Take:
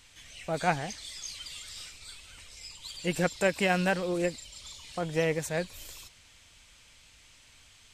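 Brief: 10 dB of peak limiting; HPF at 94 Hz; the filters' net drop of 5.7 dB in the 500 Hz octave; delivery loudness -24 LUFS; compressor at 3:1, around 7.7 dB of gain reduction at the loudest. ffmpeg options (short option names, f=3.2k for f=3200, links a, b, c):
-af "highpass=94,equalizer=f=500:t=o:g=-7,acompressor=threshold=-34dB:ratio=3,volume=18dB,alimiter=limit=-13dB:level=0:latency=1"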